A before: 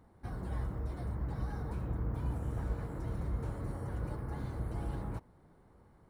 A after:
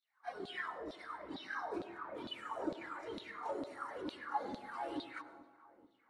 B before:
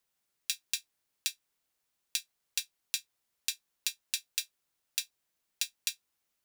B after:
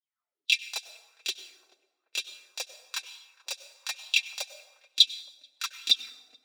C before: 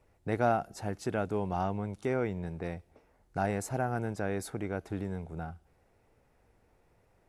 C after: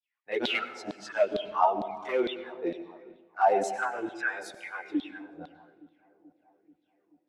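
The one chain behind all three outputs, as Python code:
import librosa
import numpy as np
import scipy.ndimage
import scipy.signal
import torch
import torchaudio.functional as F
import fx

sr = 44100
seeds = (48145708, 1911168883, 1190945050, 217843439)

y = fx.bin_expand(x, sr, power=1.5)
y = scipy.signal.sosfilt(scipy.signal.butter(2, 5300.0, 'lowpass', fs=sr, output='sos'), y)
y = fx.high_shelf(y, sr, hz=2500.0, db=11.0)
y = fx.chorus_voices(y, sr, voices=6, hz=0.35, base_ms=26, depth_ms=2.9, mix_pct=70)
y = np.clip(y, -10.0 ** (-28.0 / 20.0), 10.0 ** (-28.0 / 20.0))
y = fx.filter_lfo_highpass(y, sr, shape='saw_down', hz=2.2, low_hz=250.0, high_hz=4000.0, q=6.5)
y = fx.echo_filtered(y, sr, ms=434, feedback_pct=67, hz=1300.0, wet_db=-20.0)
y = fx.rev_plate(y, sr, seeds[0], rt60_s=1.2, hf_ratio=0.65, predelay_ms=85, drr_db=11.5)
y = fx.bell_lfo(y, sr, hz=1.1, low_hz=590.0, high_hz=3400.0, db=9)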